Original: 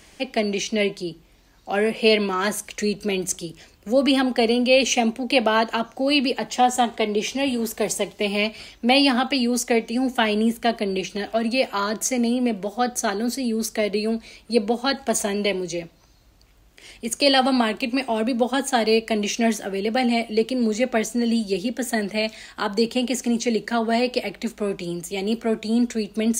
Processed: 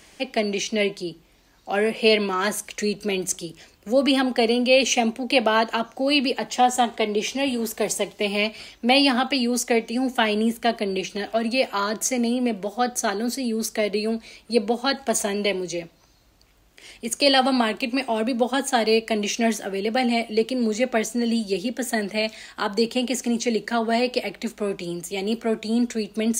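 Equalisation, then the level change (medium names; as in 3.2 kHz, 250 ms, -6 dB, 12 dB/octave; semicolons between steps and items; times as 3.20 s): bass shelf 150 Hz -5.5 dB; 0.0 dB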